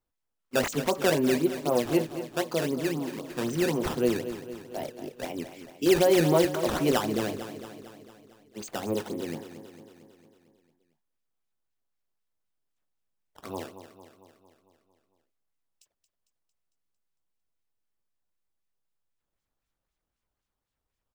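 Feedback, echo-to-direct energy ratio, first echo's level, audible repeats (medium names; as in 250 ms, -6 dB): 59%, -9.5 dB, -11.5 dB, 6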